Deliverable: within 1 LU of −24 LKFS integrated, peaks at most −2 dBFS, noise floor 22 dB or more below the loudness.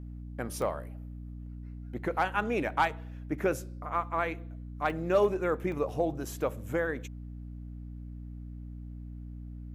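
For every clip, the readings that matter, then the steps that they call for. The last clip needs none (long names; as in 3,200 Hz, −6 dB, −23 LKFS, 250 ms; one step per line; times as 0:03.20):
number of dropouts 3; longest dropout 1.6 ms; mains hum 60 Hz; hum harmonics up to 300 Hz; level of the hum −39 dBFS; integrated loudness −31.5 LKFS; sample peak −15.5 dBFS; target loudness −24.0 LKFS
→ repair the gap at 0:00.62/0:04.90/0:05.72, 1.6 ms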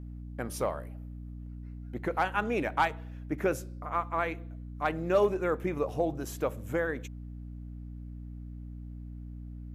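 number of dropouts 0; mains hum 60 Hz; hum harmonics up to 300 Hz; level of the hum −39 dBFS
→ hum removal 60 Hz, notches 5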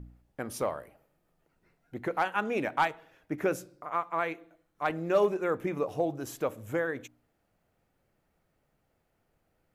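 mains hum none found; integrated loudness −31.5 LKFS; sample peak −15.5 dBFS; target loudness −24.0 LKFS
→ level +7.5 dB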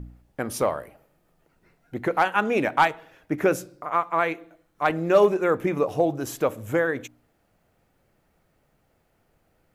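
integrated loudness −24.5 LKFS; sample peak −8.0 dBFS; background noise floor −68 dBFS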